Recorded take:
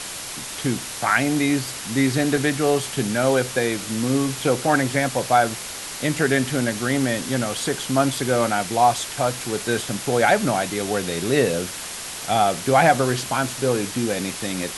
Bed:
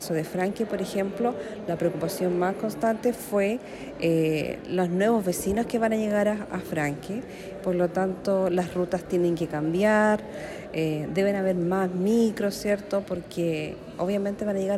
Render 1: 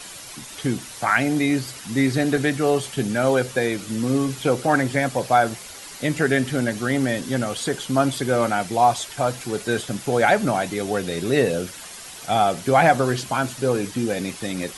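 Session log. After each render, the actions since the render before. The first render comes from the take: denoiser 9 dB, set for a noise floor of -33 dBFS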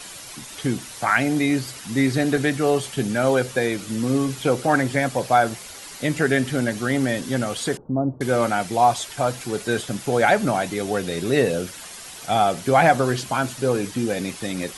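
7.77–8.21 Gaussian blur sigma 12 samples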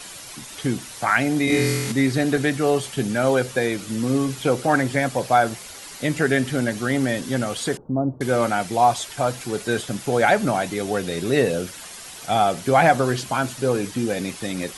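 1.45–1.92 flutter echo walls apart 4 m, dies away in 1.3 s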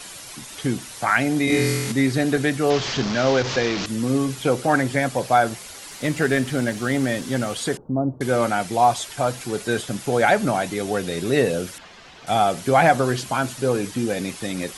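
2.7–3.86 delta modulation 32 kbps, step -19.5 dBFS; 5.9–7.53 CVSD 64 kbps; 11.78–12.27 air absorption 200 m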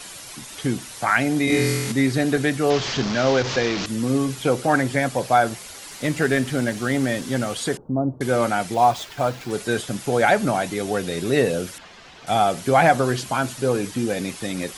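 8.74–9.51 median filter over 5 samples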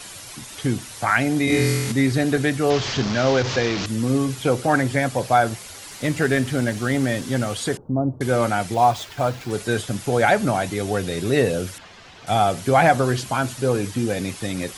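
bell 97 Hz +9.5 dB 0.53 oct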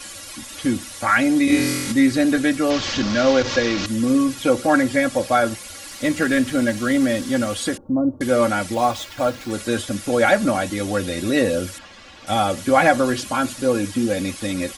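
notch 840 Hz, Q 12; comb 3.6 ms, depth 78%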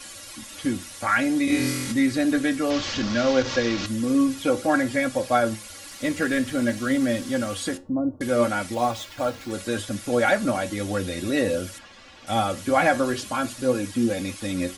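flange 0.58 Hz, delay 7.4 ms, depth 3.9 ms, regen +76%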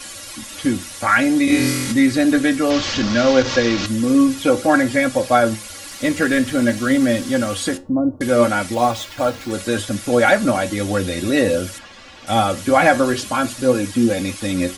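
gain +6.5 dB; limiter -1 dBFS, peak gain reduction 1.5 dB

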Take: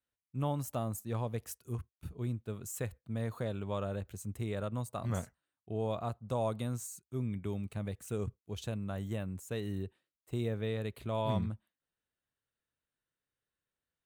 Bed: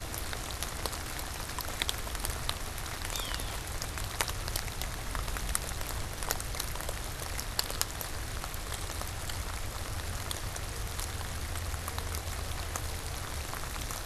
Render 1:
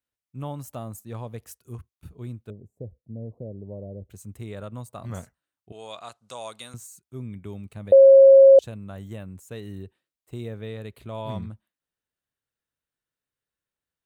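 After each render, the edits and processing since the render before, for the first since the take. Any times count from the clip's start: 2.5–4.1 inverse Chebyshev low-pass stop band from 1200 Hz; 5.72–6.74 weighting filter ITU-R 468; 7.92–8.59 bleep 542 Hz -7.5 dBFS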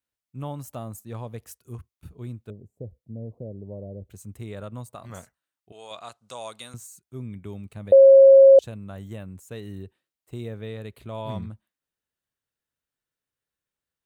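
4.95–5.91 low shelf 390 Hz -8.5 dB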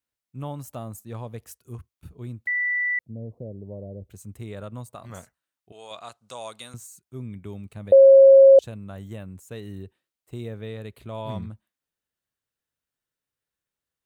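2.47–2.99 bleep 1970 Hz -21.5 dBFS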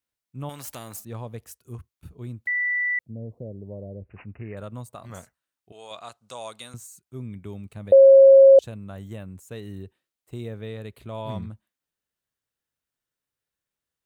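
0.49–1.05 spectral compressor 2:1; 3.94–4.57 careless resampling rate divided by 8×, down none, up filtered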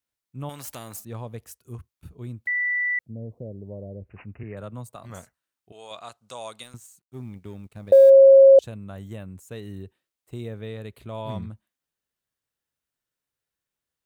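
4.43–5.01 three-band expander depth 40%; 6.63–8.1 G.711 law mismatch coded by A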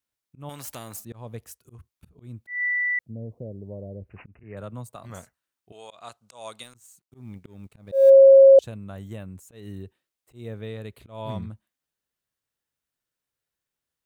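auto swell 0.172 s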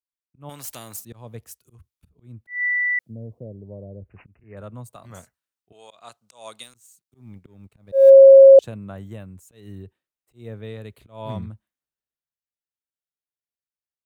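three-band expander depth 40%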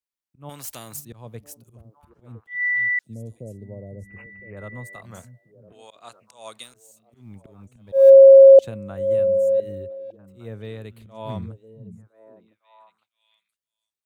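delay with a stepping band-pass 0.505 s, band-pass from 160 Hz, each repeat 1.4 oct, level -7.5 dB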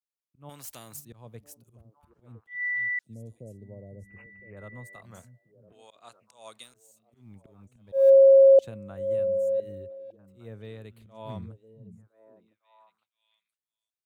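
gain -7 dB

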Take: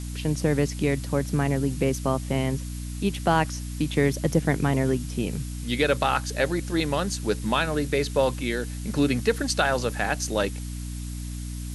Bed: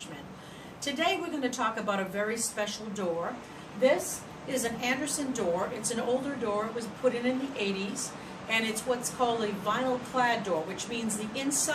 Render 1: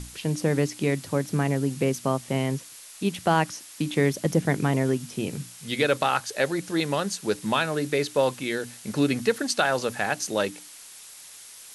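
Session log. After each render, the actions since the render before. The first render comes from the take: notches 60/120/180/240/300 Hz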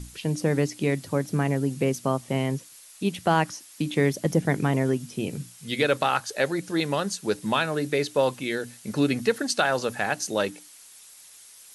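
denoiser 6 dB, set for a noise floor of -46 dBFS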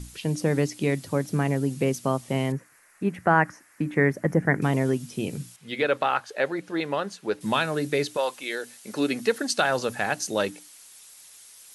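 2.52–4.62 resonant high shelf 2500 Hz -11.5 dB, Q 3; 5.56–7.41 tone controls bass -9 dB, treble -14 dB; 8.16–9.57 HPF 650 Hz -> 160 Hz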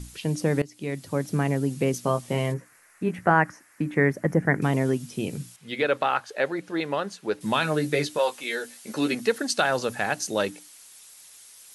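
0.62–1.27 fade in, from -19 dB; 1.92–3.31 doubler 17 ms -6 dB; 7.61–9.15 doubler 13 ms -4.5 dB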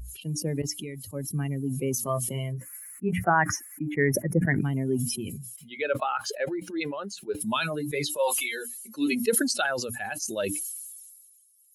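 per-bin expansion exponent 2; sustainer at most 34 dB/s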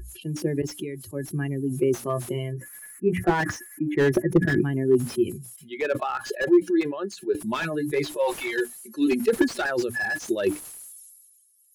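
small resonant body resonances 360/1700 Hz, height 18 dB, ringing for 85 ms; slew limiter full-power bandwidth 97 Hz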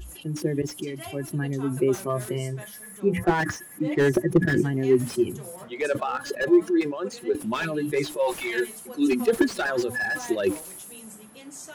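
add bed -13 dB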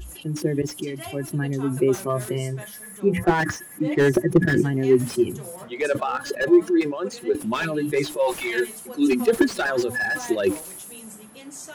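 gain +2.5 dB

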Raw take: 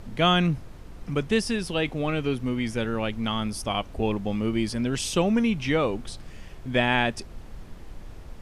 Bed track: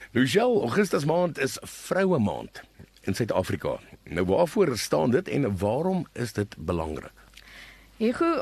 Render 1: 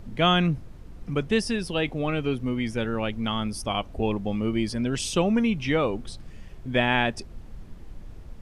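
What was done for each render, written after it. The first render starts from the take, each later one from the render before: denoiser 6 dB, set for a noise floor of -43 dBFS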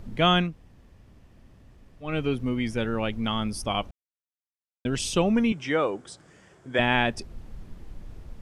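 0.46–2.08 room tone, crossfade 0.16 s; 3.91–4.85 mute; 5.52–6.79 speaker cabinet 210–9800 Hz, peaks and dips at 230 Hz -9 dB, 1500 Hz +5 dB, 2600 Hz -6 dB, 4100 Hz -7 dB, 7600 Hz +6 dB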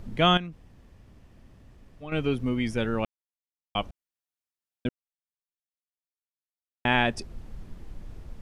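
0.37–2.12 compressor 3:1, threshold -35 dBFS; 3.05–3.75 mute; 4.89–6.85 mute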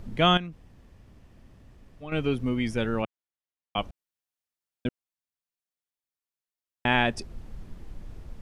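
3.02–3.78 BPF 110–3500 Hz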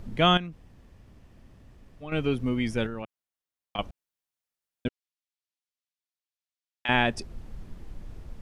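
2.86–3.79 compressor, threshold -31 dBFS; 4.88–6.89 band-pass 3700 Hz, Q 0.81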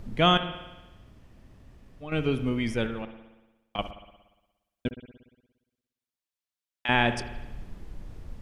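spring tank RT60 1.1 s, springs 58 ms, chirp 25 ms, DRR 10 dB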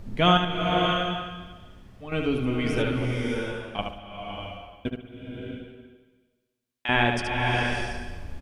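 early reflections 11 ms -9.5 dB, 74 ms -5.5 dB; bloom reverb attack 0.63 s, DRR 1 dB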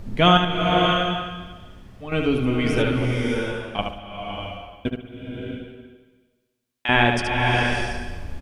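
gain +4.5 dB; limiter -3 dBFS, peak gain reduction 1.5 dB

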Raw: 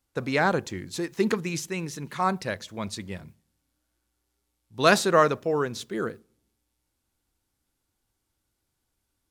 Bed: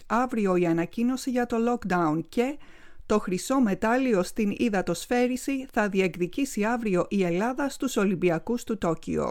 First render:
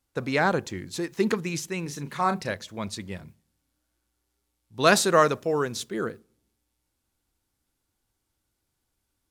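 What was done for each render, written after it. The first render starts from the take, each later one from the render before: 1.82–2.52 doubler 35 ms -9 dB; 4.96–5.89 bell 9600 Hz +6 dB 1.9 oct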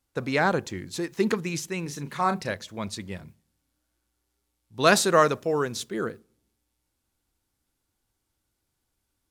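nothing audible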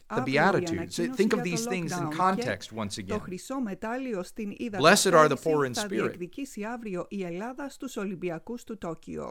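add bed -9 dB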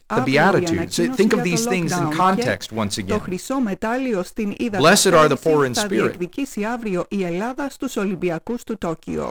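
in parallel at -2.5 dB: compressor, threshold -34 dBFS, peak gain reduction 19.5 dB; on the sum: sample leveller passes 2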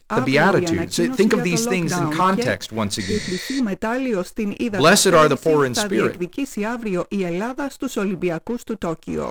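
3.03–3.57 spectral repair 460–9400 Hz before; notch 750 Hz, Q 12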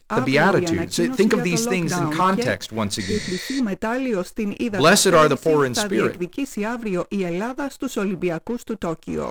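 gain -1 dB

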